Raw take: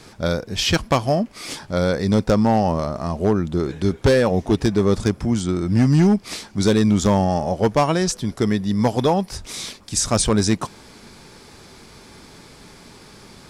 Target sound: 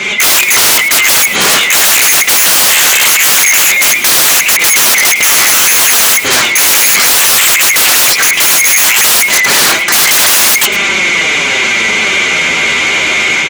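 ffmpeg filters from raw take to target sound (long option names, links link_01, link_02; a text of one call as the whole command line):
ffmpeg -i in.wav -filter_complex "[0:a]afftfilt=real='real(if(lt(b,920),b+92*(1-2*mod(floor(b/92),2)),b),0)':imag='imag(if(lt(b,920),b+92*(1-2*mod(floor(b/92),2)),b),0)':win_size=2048:overlap=0.75,asplit=2[link_01][link_02];[link_02]acompressor=threshold=-26dB:ratio=8,volume=1dB[link_03];[link_01][link_03]amix=inputs=2:normalize=0,highshelf=frequency=5100:gain=-12,flanger=delay=4.7:depth=8.2:regen=2:speed=0.19:shape=sinusoidal,lowpass=7300,dynaudnorm=framelen=110:gausssize=3:maxgain=8dB,aecho=1:1:5.1:0.3,aeval=exprs='(mod(10.6*val(0)+1,2)-1)/10.6':channel_layout=same,apsyclip=33.5dB,highpass=frequency=220:poles=1,asplit=2[link_04][link_05];[link_05]aecho=0:1:107:0.211[link_06];[link_04][link_06]amix=inputs=2:normalize=0,volume=-6dB" out.wav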